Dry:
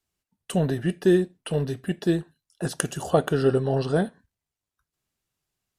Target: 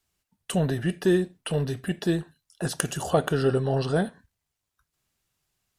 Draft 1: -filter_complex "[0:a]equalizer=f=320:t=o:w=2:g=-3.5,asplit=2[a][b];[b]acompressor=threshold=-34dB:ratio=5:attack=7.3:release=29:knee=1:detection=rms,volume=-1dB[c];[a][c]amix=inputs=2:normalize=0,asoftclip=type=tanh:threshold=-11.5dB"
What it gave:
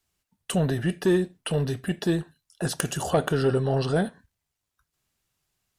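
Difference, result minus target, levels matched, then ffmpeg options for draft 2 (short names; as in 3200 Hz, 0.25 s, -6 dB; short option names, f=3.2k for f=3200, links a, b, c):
soft clip: distortion +10 dB; compressor: peak gain reduction -6 dB
-filter_complex "[0:a]equalizer=f=320:t=o:w=2:g=-3.5,asplit=2[a][b];[b]acompressor=threshold=-41.5dB:ratio=5:attack=7.3:release=29:knee=1:detection=rms,volume=-1dB[c];[a][c]amix=inputs=2:normalize=0,asoftclip=type=tanh:threshold=-5.5dB"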